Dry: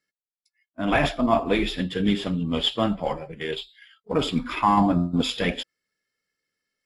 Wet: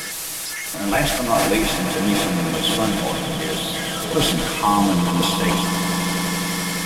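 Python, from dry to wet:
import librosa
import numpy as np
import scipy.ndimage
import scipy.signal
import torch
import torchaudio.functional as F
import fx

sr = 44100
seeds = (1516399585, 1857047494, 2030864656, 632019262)

p1 = fx.delta_mod(x, sr, bps=64000, step_db=-24.5)
p2 = fx.high_shelf(p1, sr, hz=9000.0, db=6.5)
p3 = p2 + 0.45 * np.pad(p2, (int(6.2 * sr / 1000.0), 0))[:len(p2)]
p4 = p3 + fx.echo_swell(p3, sr, ms=86, loudest=8, wet_db=-14.0, dry=0)
y = fx.sustainer(p4, sr, db_per_s=26.0)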